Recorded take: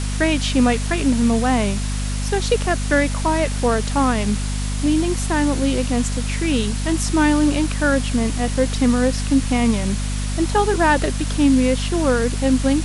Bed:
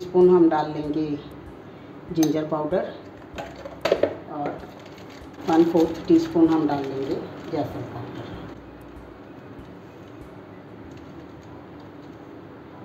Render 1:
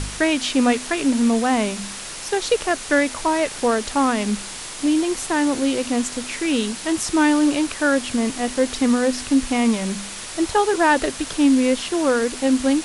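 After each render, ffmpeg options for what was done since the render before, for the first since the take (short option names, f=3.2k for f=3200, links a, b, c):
-af "bandreject=f=50:t=h:w=4,bandreject=f=100:t=h:w=4,bandreject=f=150:t=h:w=4,bandreject=f=200:t=h:w=4,bandreject=f=250:t=h:w=4"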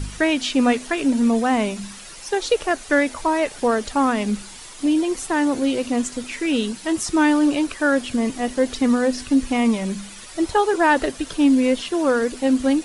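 -af "afftdn=nr=10:nf=-33"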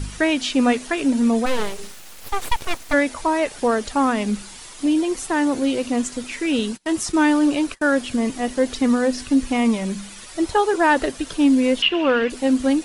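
-filter_complex "[0:a]asplit=3[a][b][c];[a]afade=t=out:st=1.45:d=0.02[d];[b]aeval=exprs='abs(val(0))':c=same,afade=t=in:st=1.45:d=0.02,afade=t=out:st=2.92:d=0.02[e];[c]afade=t=in:st=2.92:d=0.02[f];[d][e][f]amix=inputs=3:normalize=0,asettb=1/sr,asplit=3[g][h][i];[g]atrim=end=6.594[j];[h]atrim=start=6.59:end=7.95,asetpts=PTS-STARTPTS,afade=t=in:d=0.004:c=qsin,afade=t=out:st=1.356:d=0.004:c=qsin,agate=range=-29dB:threshold=-34dB:ratio=16:release=100:detection=peak[k];[i]atrim=start=7.946[l];[j][k]acrossfade=d=0.004:c1=hsin:c2=qsin[m];[m][l]acrossfade=d=0.004:c1=qsin:c2=hsin,asettb=1/sr,asplit=3[n][o][p];[n]atrim=end=11.824[q];[o]atrim=start=11.82:end=12.3,asetpts=PTS-STARTPTS,afade=t=in:d=0.004:c=qsin,afade=t=out:st=0.476:d=0.004:c=qsin,lowpass=f=2.8k:t=q:w=7.8[r];[p]atrim=start=12.296[s];[q][r]acrossfade=d=0.004:c1=hsin:c2=qsin[t];[t][s]acrossfade=d=0.004:c1=qsin:c2=hsin"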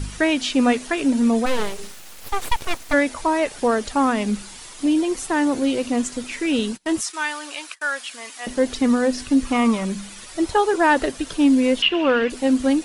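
-filter_complex "[0:a]asettb=1/sr,asplit=3[a][b][c];[a]atrim=end=7.014[d];[b]atrim=start=7.01:end=8.47,asetpts=PTS-STARTPTS,afade=t=in:d=0.004:c=qsin,afade=t=out:st=1.456:d=0.004:c=qsin,highpass=1.2k[e];[c]atrim=start=8.466[f];[d][e]acrossfade=d=0.004:c1=hsin:c2=qsin[g];[g][f]acrossfade=d=0.004:c1=qsin:c2=hsin,asettb=1/sr,asplit=3[h][i][j];[h]atrim=end=9.454[k];[i]atrim=start=9.45:end=9.86,asetpts=PTS-STARTPTS,afade=t=in:d=0.004:c=qsin,afade=t=out:st=0.406:d=0.004:c=qsin,equalizer=f=1.2k:w=3:g=11[l];[j]atrim=start=9.856[m];[k][l]acrossfade=d=0.004:c1=hsin:c2=qsin[n];[n][m]acrossfade=d=0.004:c1=qsin:c2=hsin"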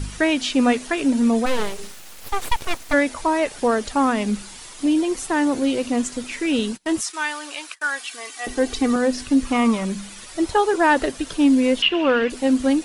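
-filter_complex "[0:a]asettb=1/sr,asplit=3[a][b][c];[a]atrim=end=7.834[d];[b]atrim=start=7.83:end=8.96,asetpts=PTS-STARTPTS,afade=t=in:d=0.004:c=qsin,afade=t=out:st=1.126:d=0.004:c=qsin,aecho=1:1:2.6:0.65,atrim=end_sample=49833[e];[c]atrim=start=8.956[f];[d][e]acrossfade=d=0.004:c1=hsin:c2=qsin[g];[g][f]acrossfade=d=0.004:c1=qsin:c2=hsin"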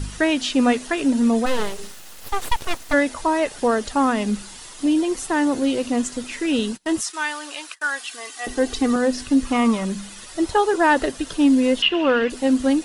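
-af "bandreject=f=2.3k:w=15"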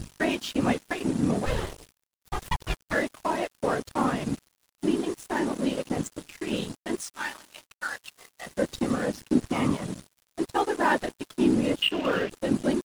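-af "afftfilt=real='hypot(re,im)*cos(2*PI*random(0))':imag='hypot(re,im)*sin(2*PI*random(1))':win_size=512:overlap=0.75,aeval=exprs='sgn(val(0))*max(abs(val(0))-0.0133,0)':c=same"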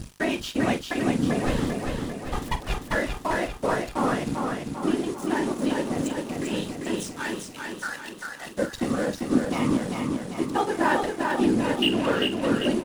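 -filter_complex "[0:a]asplit=2[a][b];[b]adelay=45,volume=-12dB[c];[a][c]amix=inputs=2:normalize=0,asplit=2[d][e];[e]aecho=0:1:395|790|1185|1580|1975|2370|2765|3160:0.631|0.353|0.198|0.111|0.0621|0.0347|0.0195|0.0109[f];[d][f]amix=inputs=2:normalize=0"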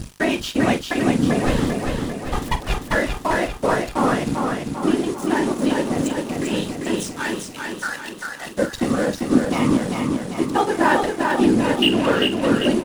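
-af "volume=5.5dB"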